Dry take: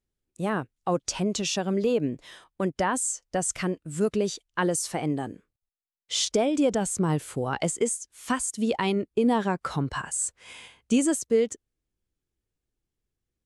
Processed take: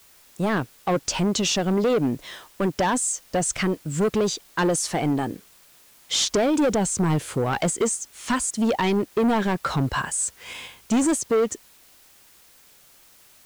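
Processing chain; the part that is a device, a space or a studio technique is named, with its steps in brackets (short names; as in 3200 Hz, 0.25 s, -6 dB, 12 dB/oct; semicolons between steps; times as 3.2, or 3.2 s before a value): compact cassette (soft clip -24.5 dBFS, distortion -10 dB; LPF 8500 Hz 12 dB/oct; wow and flutter; white noise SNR 29 dB); gain +8 dB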